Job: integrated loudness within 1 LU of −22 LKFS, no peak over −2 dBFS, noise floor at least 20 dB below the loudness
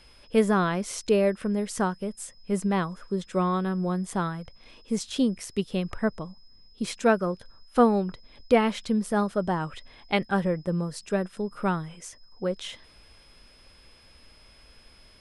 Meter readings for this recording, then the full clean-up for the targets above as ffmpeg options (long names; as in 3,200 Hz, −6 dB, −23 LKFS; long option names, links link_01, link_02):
interfering tone 5,100 Hz; level of the tone −57 dBFS; integrated loudness −27.0 LKFS; sample peak −8.0 dBFS; target loudness −22.0 LKFS
→ -af "bandreject=frequency=5100:width=30"
-af "volume=5dB"